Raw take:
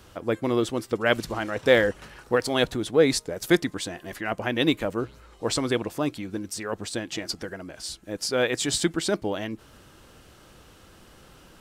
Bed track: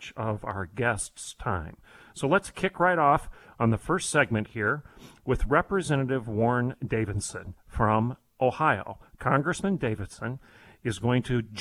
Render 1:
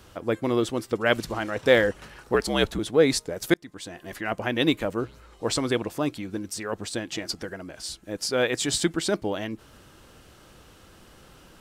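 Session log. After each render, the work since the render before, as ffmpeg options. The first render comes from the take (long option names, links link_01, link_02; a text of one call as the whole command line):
ffmpeg -i in.wav -filter_complex "[0:a]asettb=1/sr,asplit=3[link_01][link_02][link_03];[link_01]atrim=end=2.344[link_04];[link_02]atrim=start=2.34:end=2.79,asetpts=PTS-STARTPTS,afade=type=in:duration=0.004:curve=qsin,afade=type=out:start_time=0.446:duration=0.004:curve=qsin,afreqshift=-61[link_05];[link_03]atrim=start=2.786[link_06];[link_04][link_05]acrossfade=duration=0.004:curve1=hsin:curve2=qsin[link_07];[link_07][link_06]acrossfade=duration=0.004:curve1=qsin:curve2=hsin,asplit=2[link_08][link_09];[link_08]atrim=end=3.54,asetpts=PTS-STARTPTS,afade=type=out:start_time=3.536:duration=0.004:curve=hsin[link_10];[link_09]atrim=start=3.54,asetpts=PTS-STARTPTS,afade=type=in:duration=0.63[link_11];[link_10][link_11]concat=n=2:v=0:a=1" out.wav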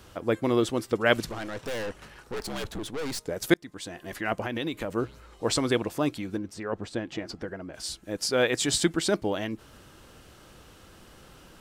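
ffmpeg -i in.wav -filter_complex "[0:a]asettb=1/sr,asplit=3[link_01][link_02][link_03];[link_01]atrim=end=1.294[link_04];[link_02]atrim=start=1.29:end=3.26,asetpts=PTS-STARTPTS,afade=type=in:duration=0.004:curve=qsin,afade=type=out:start_time=1.966:duration=0.004:curve=qsin,aeval=exprs='(tanh(35.5*val(0)+0.6)-tanh(0.6))/35.5':channel_layout=same[link_05];[link_03]atrim=start=3.256[link_06];[link_04][link_05]acrossfade=duration=0.004:curve1=hsin:curve2=qsin[link_07];[link_07][link_06]acrossfade=duration=0.004:curve1=qsin:curve2=hsin,asettb=1/sr,asplit=3[link_08][link_09][link_10];[link_08]atrim=end=4.414[link_11];[link_09]atrim=start=4.41:end=4.91,asetpts=PTS-STARTPTS,afade=type=in:duration=0.004:curve=qsin,afade=type=out:start_time=0.496:duration=0.004:curve=qsin,acompressor=threshold=-27dB:ratio=6:attack=3.2:release=140:knee=1:detection=peak[link_12];[link_10]atrim=start=4.906[link_13];[link_11][link_12]acrossfade=duration=0.004:curve1=hsin:curve2=qsin[link_14];[link_14][link_13]acrossfade=duration=0.004:curve1=qsin:curve2=hsin,asplit=3[link_15][link_16][link_17];[link_15]afade=type=out:start_time=6.36:duration=0.02[link_18];[link_16]lowpass=frequency=1500:poles=1,afade=type=in:start_time=6.36:duration=0.02,afade=type=out:start_time=7.73:duration=0.02[link_19];[link_17]afade=type=in:start_time=7.73:duration=0.02[link_20];[link_18][link_19][link_20]amix=inputs=3:normalize=0" out.wav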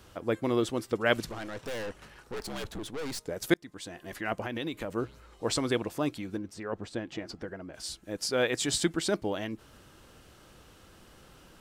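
ffmpeg -i in.wav -af "volume=-3.5dB" out.wav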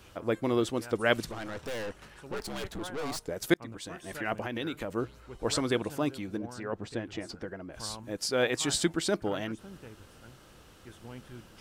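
ffmpeg -i in.wav -i bed.wav -filter_complex "[1:a]volume=-21dB[link_01];[0:a][link_01]amix=inputs=2:normalize=0" out.wav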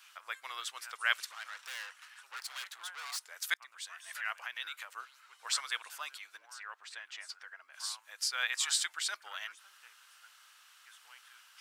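ffmpeg -i in.wav -af "highpass=frequency=1200:width=0.5412,highpass=frequency=1200:width=1.3066" out.wav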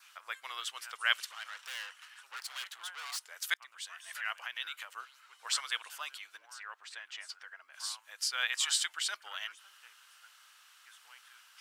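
ffmpeg -i in.wav -af "adynamicequalizer=threshold=0.00158:dfrequency=3000:dqfactor=6.9:tfrequency=3000:tqfactor=6.9:attack=5:release=100:ratio=0.375:range=3.5:mode=boostabove:tftype=bell" out.wav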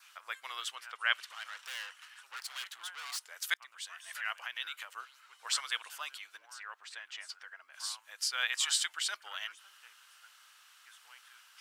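ffmpeg -i in.wav -filter_complex "[0:a]asettb=1/sr,asplit=3[link_01][link_02][link_03];[link_01]atrim=end=0.754[link_04];[link_02]atrim=start=0.75:end=1.3,asetpts=PTS-STARTPTS,afade=type=in:duration=0.004:curve=qsin,afade=type=out:start_time=0.546:duration=0.004:curve=qsin,bass=frequency=250:gain=-10,treble=frequency=4000:gain=-10[link_05];[link_03]atrim=start=1.296[link_06];[link_04][link_05]acrossfade=duration=0.004:curve1=hsin:curve2=qsin[link_07];[link_07][link_06]acrossfade=duration=0.004:curve1=qsin:curve2=hsin,asettb=1/sr,asplit=3[link_08][link_09][link_10];[link_08]atrim=end=1.904[link_11];[link_09]atrim=start=1.9:end=3.16,asetpts=PTS-STARTPTS,afade=type=in:duration=0.004:curve=qsin,afade=type=out:start_time=1.256:duration=0.004:curve=qsin,asubboost=boost=9.5:cutoff=230[link_12];[link_10]atrim=start=3.156[link_13];[link_11][link_12]acrossfade=duration=0.004:curve1=hsin:curve2=qsin[link_14];[link_14][link_13]acrossfade=duration=0.004:curve1=qsin:curve2=hsin" out.wav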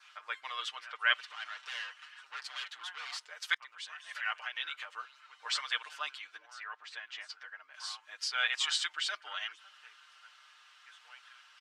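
ffmpeg -i in.wav -af "lowpass=4600,aecho=1:1:6.6:0.79" out.wav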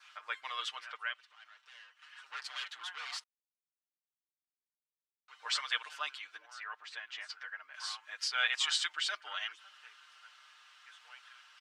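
ffmpeg -i in.wav -filter_complex "[0:a]asettb=1/sr,asplit=3[link_01][link_02][link_03];[link_01]atrim=end=7.224[link_04];[link_02]atrim=start=7.22:end=8.28,asetpts=PTS-STARTPTS,afade=type=in:duration=0.004:curve=qsin,afade=type=out:start_time=1.056:duration=0.004:curve=qsin,equalizer=frequency=1800:width_type=o:width=1.3:gain=4[link_05];[link_03]atrim=start=8.276[link_06];[link_04][link_05]acrossfade=duration=0.004:curve1=hsin:curve2=qsin[link_07];[link_07][link_06]acrossfade=duration=0.004:curve1=qsin:curve2=hsin,asplit=5[link_08][link_09][link_10][link_11][link_12];[link_08]atrim=end=1.12,asetpts=PTS-STARTPTS,afade=type=out:start_time=0.9:duration=0.22:silence=0.177828[link_13];[link_09]atrim=start=1.12:end=1.95,asetpts=PTS-STARTPTS,volume=-15dB[link_14];[link_10]atrim=start=1.95:end=3.24,asetpts=PTS-STARTPTS,afade=type=in:duration=0.22:silence=0.177828,afade=type=out:start_time=1.286:duration=0.004:curve=hsin[link_15];[link_11]atrim=start=3.24:end=5.28,asetpts=PTS-STARTPTS,volume=0[link_16];[link_12]atrim=start=5.28,asetpts=PTS-STARTPTS,afade=type=in:duration=0.004:curve=hsin[link_17];[link_13][link_14][link_15][link_16][link_17]concat=n=5:v=0:a=1" out.wav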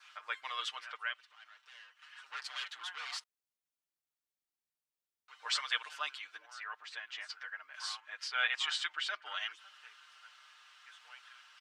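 ffmpeg -i in.wav -filter_complex "[0:a]asettb=1/sr,asplit=3[link_01][link_02][link_03];[link_01]atrim=end=8.004[link_04];[link_02]atrim=start=8:end=9.26,asetpts=PTS-STARTPTS,afade=type=in:duration=0.004:curve=qsin,afade=type=out:start_time=1.256:duration=0.004:curve=qsin,bass=frequency=250:gain=-1,treble=frequency=4000:gain=-9[link_05];[link_03]atrim=start=9.256[link_06];[link_04][link_05]acrossfade=duration=0.004:curve1=hsin:curve2=qsin[link_07];[link_07][link_06]acrossfade=duration=0.004:curve1=qsin:curve2=hsin" out.wav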